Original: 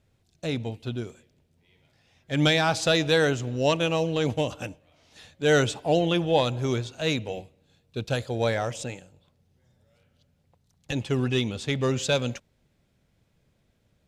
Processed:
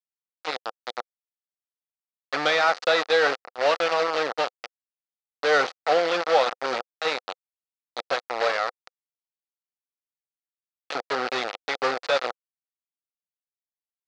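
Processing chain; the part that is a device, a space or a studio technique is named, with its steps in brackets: hand-held game console (bit-crush 4-bit; speaker cabinet 500–5000 Hz, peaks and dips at 510 Hz +7 dB, 750 Hz +7 dB, 1300 Hz +9 dB, 1900 Hz +4 dB, 3200 Hz -3 dB, 4500 Hz +4 dB); 3.06–4.58 gate -27 dBFS, range -10 dB; gain -2 dB

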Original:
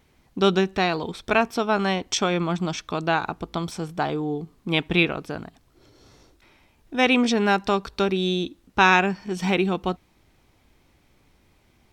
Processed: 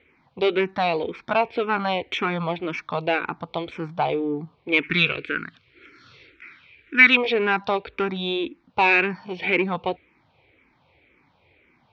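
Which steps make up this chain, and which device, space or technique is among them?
barber-pole phaser into a guitar amplifier (endless phaser -1.9 Hz; soft clip -18.5 dBFS, distortion -13 dB; speaker cabinet 97–3800 Hz, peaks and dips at 200 Hz -6 dB, 500 Hz +5 dB, 920 Hz +4 dB, 2300 Hz +10 dB); 4.83–7.17 EQ curve 410 Hz 0 dB, 830 Hz -18 dB, 1400 Hz +12 dB, 3800 Hz +8 dB; gain +3 dB

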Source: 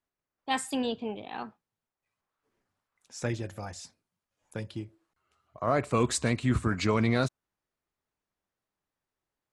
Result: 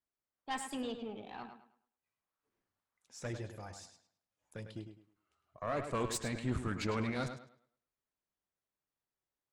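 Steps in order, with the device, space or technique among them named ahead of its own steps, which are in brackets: rockabilly slapback (tube stage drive 21 dB, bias 0.65; tape echo 0.104 s, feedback 31%, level -7.5 dB, low-pass 5700 Hz); gain -5 dB

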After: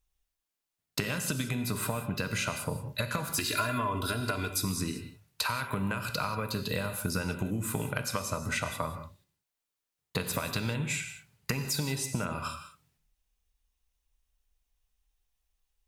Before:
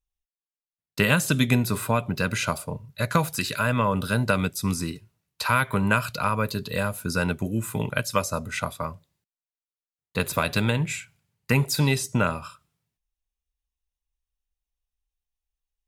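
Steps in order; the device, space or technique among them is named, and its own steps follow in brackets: serial compression, leveller first (compressor, threshold -25 dBFS, peak gain reduction 10 dB; compressor 6:1, threshold -37 dBFS, peak gain reduction 13.5 dB); 3.32–4.65 comb 2.9 ms, depth 83%; non-linear reverb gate 0.21 s flat, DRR 7 dB; gain +7.5 dB

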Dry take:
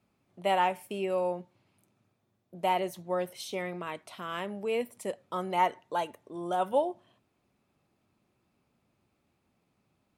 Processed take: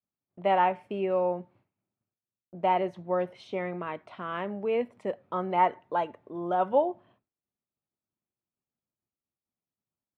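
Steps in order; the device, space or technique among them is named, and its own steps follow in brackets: hearing-loss simulation (LPF 2000 Hz 12 dB/oct; expander -58 dBFS); gain +3 dB

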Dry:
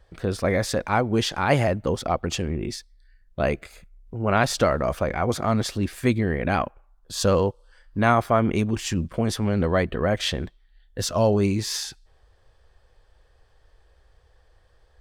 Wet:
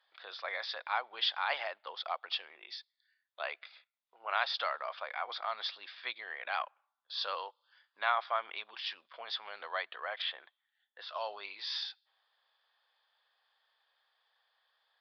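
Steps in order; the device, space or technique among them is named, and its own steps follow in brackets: 10.22–11.09 LPF 2300 Hz 12 dB/oct; musical greeting card (downsampling 11025 Hz; HPF 820 Hz 24 dB/oct; bell 3500 Hz +9 dB 0.29 oct); gain -8 dB

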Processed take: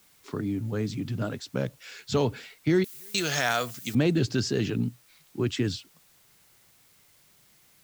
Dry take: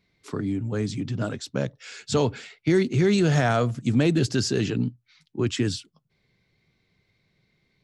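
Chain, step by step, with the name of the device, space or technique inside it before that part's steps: worn cassette (LPF 6400 Hz; wow and flutter; level dips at 2.85, 0.291 s -27 dB; white noise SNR 32 dB); 2.84–3.95 tilt +4.5 dB/oct; gain -2.5 dB

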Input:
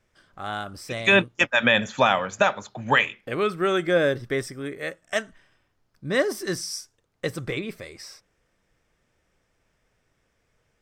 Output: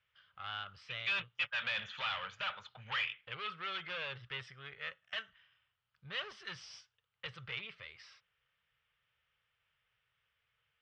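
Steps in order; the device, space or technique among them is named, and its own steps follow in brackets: scooped metal amplifier (tube stage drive 26 dB, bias 0.35; speaker cabinet 84–3600 Hz, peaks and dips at 130 Hz +4 dB, 250 Hz -4 dB, 460 Hz +3 dB, 680 Hz -4 dB, 1300 Hz +5 dB, 3000 Hz +8 dB; passive tone stack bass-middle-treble 10-0-10); gain -2.5 dB

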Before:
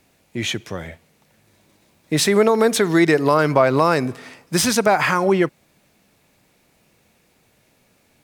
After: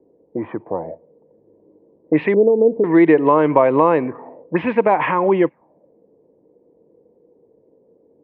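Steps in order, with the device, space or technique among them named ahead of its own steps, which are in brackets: 2.34–2.84 inverse Chebyshev low-pass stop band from 1500 Hz, stop band 50 dB; envelope filter bass rig (envelope low-pass 440–3200 Hz up, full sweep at -14 dBFS; speaker cabinet 63–2000 Hz, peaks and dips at 80 Hz -9 dB, 120 Hz -5 dB, 310 Hz +8 dB, 490 Hz +8 dB, 960 Hz +9 dB, 1400 Hz -10 dB); gain -2.5 dB

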